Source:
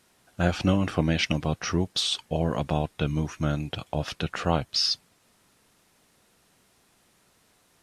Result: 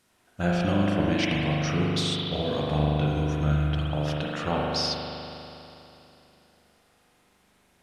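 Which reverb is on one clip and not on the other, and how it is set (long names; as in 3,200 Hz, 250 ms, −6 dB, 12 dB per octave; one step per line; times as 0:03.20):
spring reverb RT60 3.1 s, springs 40 ms, chirp 70 ms, DRR −4 dB
level −4.5 dB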